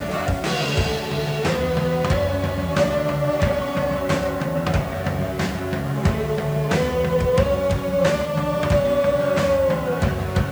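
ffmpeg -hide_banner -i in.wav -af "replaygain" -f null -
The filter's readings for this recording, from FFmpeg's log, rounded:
track_gain = +3.5 dB
track_peak = 0.290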